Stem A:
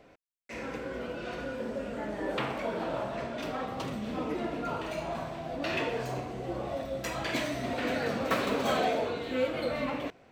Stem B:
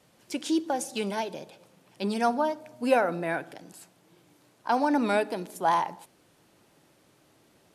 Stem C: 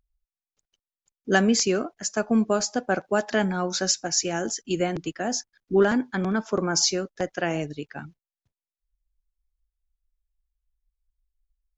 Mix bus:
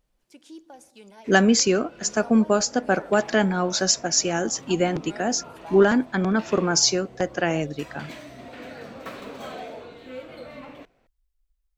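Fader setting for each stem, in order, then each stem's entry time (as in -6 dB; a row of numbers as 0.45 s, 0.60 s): -8.5 dB, -17.5 dB, +3.0 dB; 0.75 s, 0.00 s, 0.00 s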